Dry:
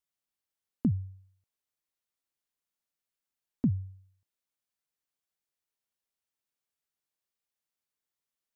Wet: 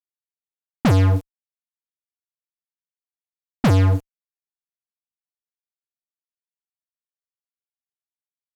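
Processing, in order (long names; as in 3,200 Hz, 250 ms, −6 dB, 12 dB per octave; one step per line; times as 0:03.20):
fuzz pedal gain 56 dB, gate −54 dBFS
low-pass that shuts in the quiet parts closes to 560 Hz, open at −16 dBFS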